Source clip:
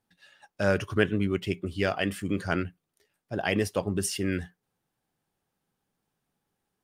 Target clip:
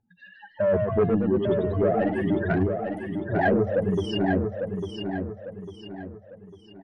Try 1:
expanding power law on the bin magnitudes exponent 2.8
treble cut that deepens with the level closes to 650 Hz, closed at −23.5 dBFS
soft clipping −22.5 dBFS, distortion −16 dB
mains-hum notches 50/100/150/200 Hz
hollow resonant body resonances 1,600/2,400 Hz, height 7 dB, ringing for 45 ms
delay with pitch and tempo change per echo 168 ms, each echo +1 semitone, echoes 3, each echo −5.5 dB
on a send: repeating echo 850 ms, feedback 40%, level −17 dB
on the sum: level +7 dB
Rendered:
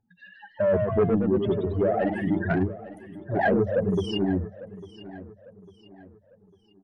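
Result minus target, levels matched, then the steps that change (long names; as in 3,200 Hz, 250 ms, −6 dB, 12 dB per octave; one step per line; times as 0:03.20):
echo-to-direct −11 dB
change: repeating echo 850 ms, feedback 40%, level −6 dB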